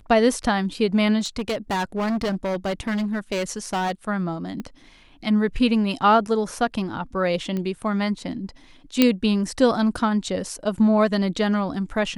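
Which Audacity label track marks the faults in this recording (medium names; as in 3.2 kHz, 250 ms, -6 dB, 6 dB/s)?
1.190000	3.920000	clipped -21 dBFS
4.600000	4.600000	pop -20 dBFS
7.570000	7.570000	pop -17 dBFS
9.020000	9.020000	pop -2 dBFS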